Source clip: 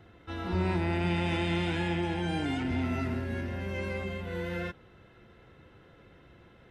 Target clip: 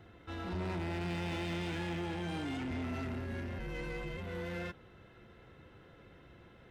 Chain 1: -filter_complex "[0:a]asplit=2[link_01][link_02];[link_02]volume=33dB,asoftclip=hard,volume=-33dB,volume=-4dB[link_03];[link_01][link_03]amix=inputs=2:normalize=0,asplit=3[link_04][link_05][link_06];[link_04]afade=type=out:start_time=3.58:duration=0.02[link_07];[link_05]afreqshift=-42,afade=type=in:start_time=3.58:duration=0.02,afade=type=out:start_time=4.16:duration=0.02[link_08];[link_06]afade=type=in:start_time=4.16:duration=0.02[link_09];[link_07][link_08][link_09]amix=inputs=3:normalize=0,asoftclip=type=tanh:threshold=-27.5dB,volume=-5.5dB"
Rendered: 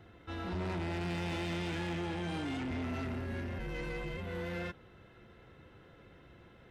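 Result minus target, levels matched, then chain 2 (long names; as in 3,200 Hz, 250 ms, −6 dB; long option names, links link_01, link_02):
gain into a clipping stage and back: distortion −4 dB
-filter_complex "[0:a]asplit=2[link_01][link_02];[link_02]volume=42.5dB,asoftclip=hard,volume=-42.5dB,volume=-4dB[link_03];[link_01][link_03]amix=inputs=2:normalize=0,asplit=3[link_04][link_05][link_06];[link_04]afade=type=out:start_time=3.58:duration=0.02[link_07];[link_05]afreqshift=-42,afade=type=in:start_time=3.58:duration=0.02,afade=type=out:start_time=4.16:duration=0.02[link_08];[link_06]afade=type=in:start_time=4.16:duration=0.02[link_09];[link_07][link_08][link_09]amix=inputs=3:normalize=0,asoftclip=type=tanh:threshold=-27.5dB,volume=-5.5dB"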